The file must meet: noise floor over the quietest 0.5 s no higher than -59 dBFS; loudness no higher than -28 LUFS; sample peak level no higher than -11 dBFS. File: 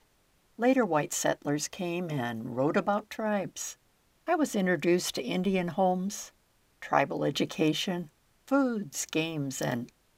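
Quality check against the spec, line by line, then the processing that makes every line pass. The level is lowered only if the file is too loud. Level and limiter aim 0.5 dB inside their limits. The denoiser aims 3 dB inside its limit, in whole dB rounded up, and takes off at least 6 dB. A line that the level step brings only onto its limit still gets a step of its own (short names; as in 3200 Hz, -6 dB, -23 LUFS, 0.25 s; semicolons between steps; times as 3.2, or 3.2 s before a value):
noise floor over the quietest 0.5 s -68 dBFS: OK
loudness -29.5 LUFS: OK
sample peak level -7.5 dBFS: fail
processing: limiter -11.5 dBFS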